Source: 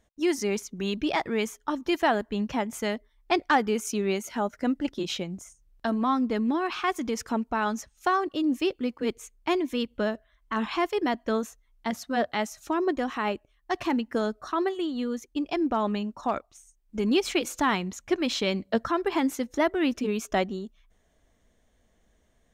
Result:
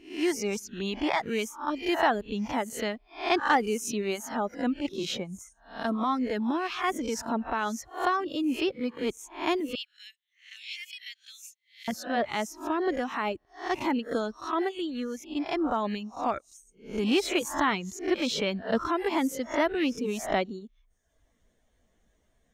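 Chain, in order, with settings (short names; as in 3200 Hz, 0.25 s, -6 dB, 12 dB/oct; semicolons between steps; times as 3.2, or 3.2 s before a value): spectral swells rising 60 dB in 0.44 s; reverb removal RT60 0.83 s; 9.75–11.88 steep high-pass 2200 Hz 48 dB/oct; gain -2 dB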